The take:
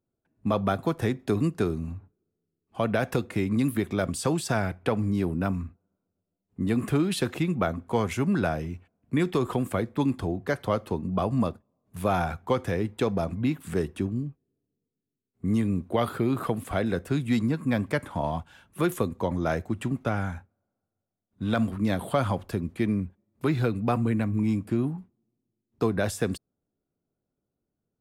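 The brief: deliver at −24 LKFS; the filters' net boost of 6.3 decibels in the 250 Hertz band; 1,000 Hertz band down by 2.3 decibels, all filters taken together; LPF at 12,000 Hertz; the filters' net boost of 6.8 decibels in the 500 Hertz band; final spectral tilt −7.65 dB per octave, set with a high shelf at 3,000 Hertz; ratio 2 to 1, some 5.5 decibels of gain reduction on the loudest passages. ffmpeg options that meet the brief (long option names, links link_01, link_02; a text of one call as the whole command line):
ffmpeg -i in.wav -af "lowpass=12000,equalizer=frequency=250:width_type=o:gain=6,equalizer=frequency=500:width_type=o:gain=8.5,equalizer=frequency=1000:width_type=o:gain=-7.5,highshelf=frequency=3000:gain=-6,acompressor=threshold=-24dB:ratio=2,volume=3dB" out.wav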